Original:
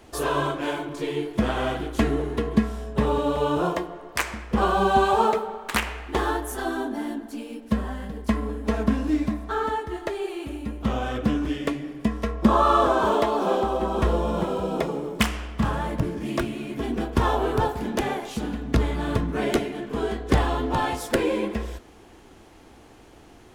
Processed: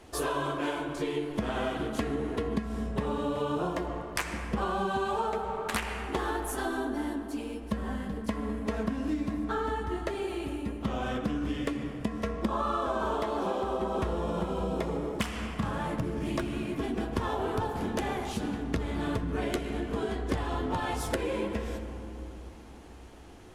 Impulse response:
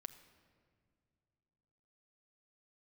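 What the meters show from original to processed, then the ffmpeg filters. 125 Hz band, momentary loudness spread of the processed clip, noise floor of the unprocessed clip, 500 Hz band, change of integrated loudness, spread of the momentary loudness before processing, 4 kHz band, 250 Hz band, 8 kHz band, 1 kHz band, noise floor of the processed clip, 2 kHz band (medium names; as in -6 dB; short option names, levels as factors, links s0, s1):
-6.5 dB, 5 LU, -50 dBFS, -7.0 dB, -7.0 dB, 9 LU, -6.5 dB, -6.0 dB, -4.5 dB, -8.0 dB, -44 dBFS, -6.5 dB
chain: -filter_complex "[1:a]atrim=start_sample=2205,asetrate=24255,aresample=44100[s0];[0:a][s0]afir=irnorm=-1:irlink=0,acompressor=threshold=0.0447:ratio=6"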